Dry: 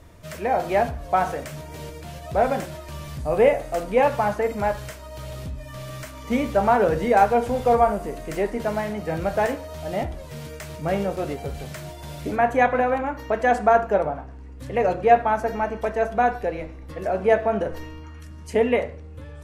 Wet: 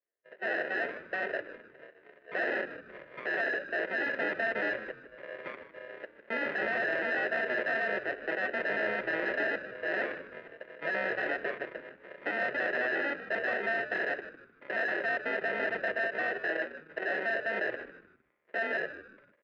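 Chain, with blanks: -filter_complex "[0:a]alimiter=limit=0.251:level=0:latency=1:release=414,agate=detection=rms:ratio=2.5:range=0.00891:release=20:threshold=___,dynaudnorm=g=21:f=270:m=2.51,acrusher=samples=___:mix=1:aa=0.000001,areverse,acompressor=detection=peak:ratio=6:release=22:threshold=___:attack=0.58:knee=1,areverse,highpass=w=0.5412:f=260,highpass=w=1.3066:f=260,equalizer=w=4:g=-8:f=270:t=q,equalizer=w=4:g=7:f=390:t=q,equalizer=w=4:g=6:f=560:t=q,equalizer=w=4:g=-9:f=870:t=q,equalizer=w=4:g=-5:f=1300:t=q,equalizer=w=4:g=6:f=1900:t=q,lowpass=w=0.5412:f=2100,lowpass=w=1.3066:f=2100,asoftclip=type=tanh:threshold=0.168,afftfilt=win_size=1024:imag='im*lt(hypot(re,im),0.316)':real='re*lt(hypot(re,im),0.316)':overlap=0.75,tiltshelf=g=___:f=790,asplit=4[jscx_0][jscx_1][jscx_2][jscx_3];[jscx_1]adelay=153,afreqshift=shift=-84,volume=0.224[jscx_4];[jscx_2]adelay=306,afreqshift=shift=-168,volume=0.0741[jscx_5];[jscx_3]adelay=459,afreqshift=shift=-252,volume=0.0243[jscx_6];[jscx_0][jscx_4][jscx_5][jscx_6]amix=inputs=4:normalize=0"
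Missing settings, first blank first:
0.0316, 39, 0.0562, -8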